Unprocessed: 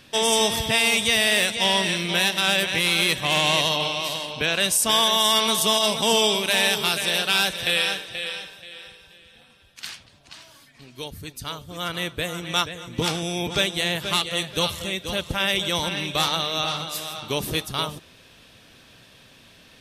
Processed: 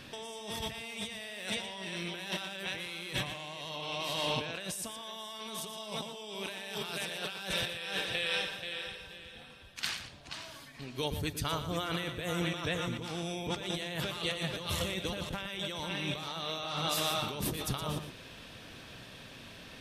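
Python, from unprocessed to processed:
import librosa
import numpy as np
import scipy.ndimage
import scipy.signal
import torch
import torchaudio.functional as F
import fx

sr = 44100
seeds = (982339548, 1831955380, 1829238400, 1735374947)

p1 = fx.high_shelf(x, sr, hz=3800.0, db=-5.5)
p2 = fx.over_compress(p1, sr, threshold_db=-34.0, ratio=-1.0)
p3 = p2 + fx.echo_single(p2, sr, ms=118, db=-10.5, dry=0)
y = p3 * 10.0 ** (-4.5 / 20.0)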